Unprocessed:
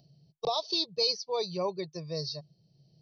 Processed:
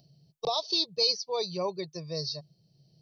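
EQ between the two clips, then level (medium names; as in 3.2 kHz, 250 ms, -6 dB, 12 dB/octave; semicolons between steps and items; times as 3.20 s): treble shelf 4.4 kHz +5 dB; 0.0 dB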